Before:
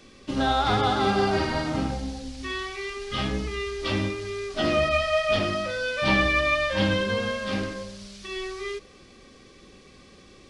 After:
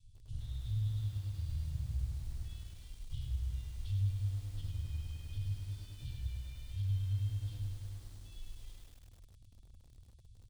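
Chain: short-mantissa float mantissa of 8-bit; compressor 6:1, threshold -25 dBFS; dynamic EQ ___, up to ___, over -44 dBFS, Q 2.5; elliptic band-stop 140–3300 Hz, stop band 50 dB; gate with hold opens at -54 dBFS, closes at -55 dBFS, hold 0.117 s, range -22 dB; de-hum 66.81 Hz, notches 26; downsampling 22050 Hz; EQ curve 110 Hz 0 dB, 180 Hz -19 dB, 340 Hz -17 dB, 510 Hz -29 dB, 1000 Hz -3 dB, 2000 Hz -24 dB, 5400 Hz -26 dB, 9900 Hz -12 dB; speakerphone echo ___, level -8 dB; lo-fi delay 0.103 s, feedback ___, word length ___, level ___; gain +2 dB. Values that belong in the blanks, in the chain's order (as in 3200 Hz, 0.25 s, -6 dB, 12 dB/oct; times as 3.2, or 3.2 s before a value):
590 Hz, -3 dB, 90 ms, 80%, 10-bit, -7 dB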